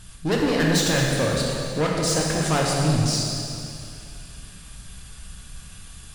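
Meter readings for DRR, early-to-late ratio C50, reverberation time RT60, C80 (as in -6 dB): -3.0 dB, -0.5 dB, 2.6 s, 0.5 dB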